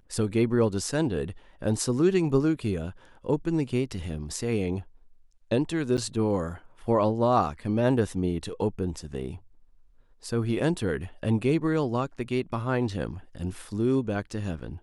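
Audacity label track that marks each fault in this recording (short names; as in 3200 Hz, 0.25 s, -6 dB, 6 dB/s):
5.970000	5.980000	gap 8.4 ms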